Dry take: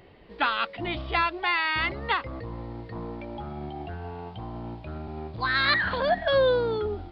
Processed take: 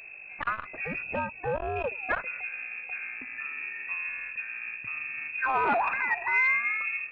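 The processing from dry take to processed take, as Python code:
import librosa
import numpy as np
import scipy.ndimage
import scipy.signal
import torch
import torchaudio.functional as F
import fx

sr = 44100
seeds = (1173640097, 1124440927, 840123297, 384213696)

y = scipy.signal.sosfilt(scipy.signal.butter(4, 66.0, 'highpass', fs=sr, output='sos'), x)
y = fx.hum_notches(y, sr, base_hz=60, count=8)
y = fx.spec_box(y, sr, start_s=1.03, length_s=1.06, low_hz=250.0, high_hz=1600.0, gain_db=-13)
y = fx.graphic_eq_31(y, sr, hz=(100, 315, 630), db=(10, -12, -9))
y = fx.add_hum(y, sr, base_hz=50, snr_db=17)
y = fx.freq_invert(y, sr, carrier_hz=2600)
y = fx.transformer_sat(y, sr, knee_hz=600.0)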